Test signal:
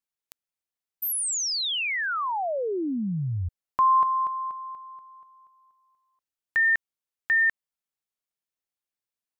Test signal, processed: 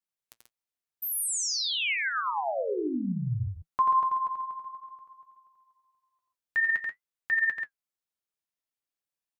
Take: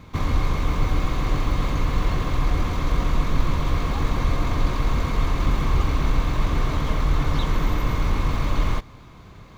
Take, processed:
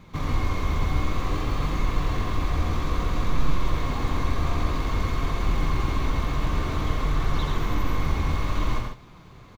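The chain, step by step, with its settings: flange 0.55 Hz, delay 4.9 ms, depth 9.6 ms, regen +51%; multi-tap echo 86/136 ms -4.5/-7 dB

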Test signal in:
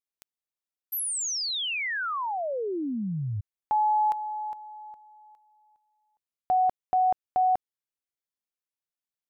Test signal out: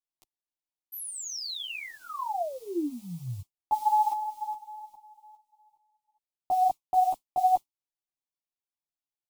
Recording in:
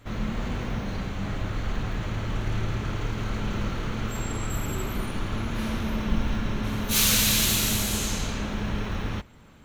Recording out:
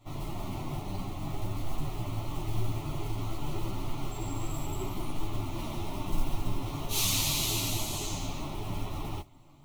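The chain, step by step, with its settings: treble shelf 4 kHz -8 dB; modulation noise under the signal 25 dB; static phaser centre 320 Hz, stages 8; three-phase chorus; trim +2.5 dB

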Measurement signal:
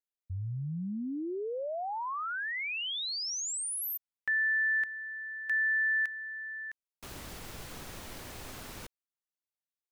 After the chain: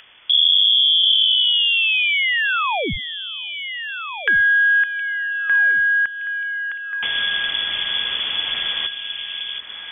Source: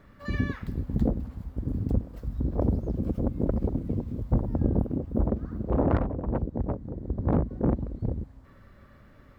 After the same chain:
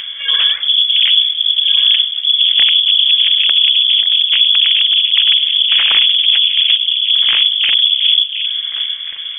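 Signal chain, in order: octave divider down 2 oct, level +1 dB; Chebyshev shaper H 3 -24 dB, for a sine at -9 dBFS; in parallel at -1.5 dB: upward compressor, threshold -32 dBFS; on the sum: distance through air 330 m; sine folder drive 15 dB, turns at -4 dBFS; on a send: echo whose repeats swap between lows and highs 717 ms, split 1.1 kHz, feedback 55%, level -7.5 dB; on the sum: frequency inversion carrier 3.4 kHz; tape noise reduction on one side only encoder only; trim -5.5 dB

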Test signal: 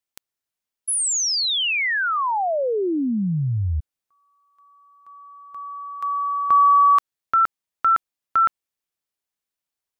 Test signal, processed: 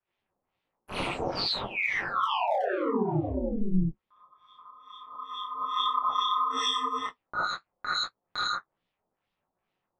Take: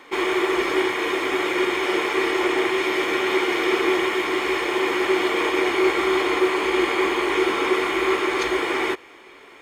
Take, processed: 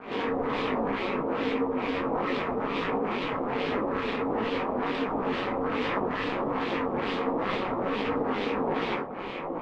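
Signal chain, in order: median filter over 25 samples; sine folder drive 11 dB, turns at -10.5 dBFS; compression 20:1, threshold -20 dBFS; LFO low-pass sine 2.3 Hz 640–3600 Hz; gated-style reverb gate 100 ms rising, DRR -6.5 dB; hard clipper -1 dBFS; flange 0.61 Hz, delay 7.7 ms, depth 7.6 ms, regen -42%; gain riding within 3 dB 2 s; peak limiter -14.5 dBFS; ring modulator 98 Hz; detune thickener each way 47 cents

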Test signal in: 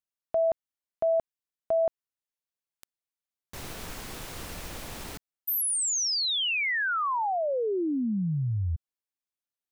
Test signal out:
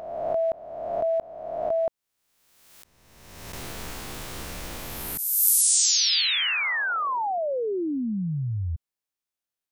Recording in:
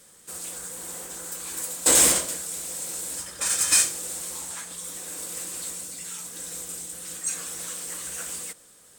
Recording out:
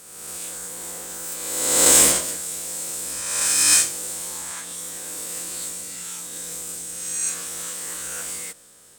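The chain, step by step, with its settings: reverse spectral sustain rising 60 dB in 1.40 s

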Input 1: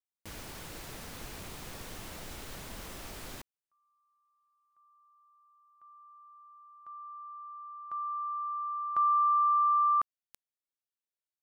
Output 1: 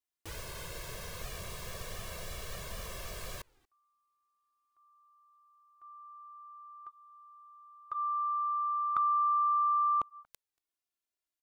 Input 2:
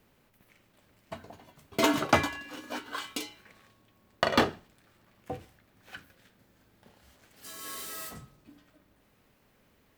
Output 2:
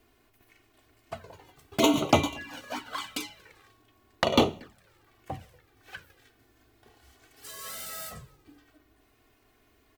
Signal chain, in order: echo from a far wall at 40 m, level -27 dB; touch-sensitive flanger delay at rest 2.9 ms, full sweep at -26.5 dBFS; trim +4.5 dB

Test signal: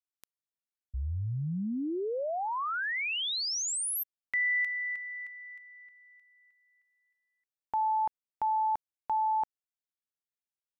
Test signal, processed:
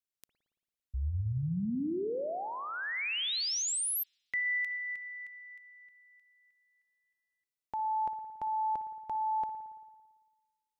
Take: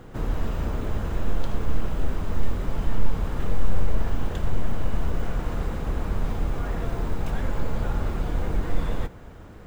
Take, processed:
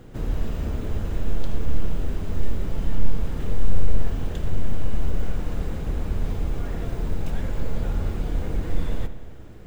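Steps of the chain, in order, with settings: peaking EQ 1.1 kHz -7 dB 1.5 oct; spring tank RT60 1.4 s, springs 56 ms, chirp 70 ms, DRR 10.5 dB

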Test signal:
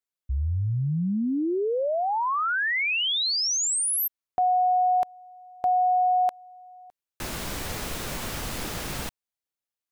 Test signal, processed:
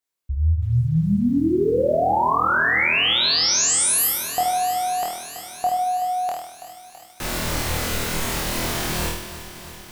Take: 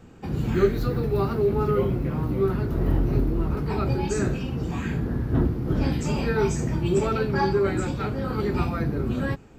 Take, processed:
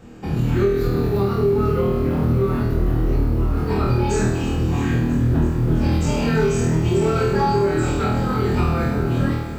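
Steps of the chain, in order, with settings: on a send: flutter echo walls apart 4.3 m, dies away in 0.73 s; on the sum: compression 4:1, threshold -19 dBFS; bit-crushed delay 329 ms, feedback 80%, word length 8-bit, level -14 dB; trim +3.5 dB

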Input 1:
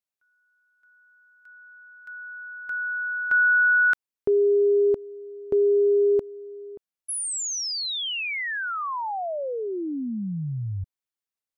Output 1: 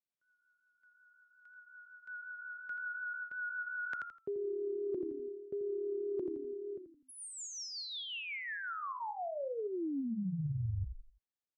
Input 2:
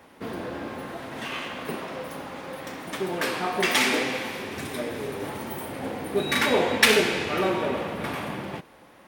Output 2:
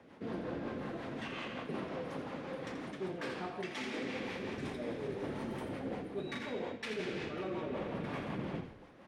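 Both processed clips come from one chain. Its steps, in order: rotary cabinet horn 5.5 Hz; band-pass 110–7000 Hz; frequency-shifting echo 83 ms, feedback 37%, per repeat -36 Hz, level -9.5 dB; reverse; compression 12:1, threshold -33 dBFS; reverse; tilt EQ -1.5 dB/octave; trim -4 dB

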